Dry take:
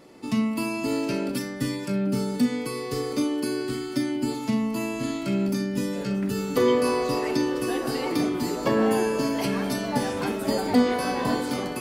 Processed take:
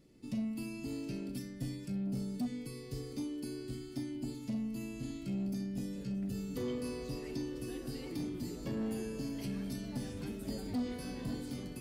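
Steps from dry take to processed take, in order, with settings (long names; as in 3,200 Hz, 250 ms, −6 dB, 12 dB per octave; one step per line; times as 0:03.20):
guitar amp tone stack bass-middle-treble 10-0-1
soft clipping −36.5 dBFS, distortion −17 dB
level +7 dB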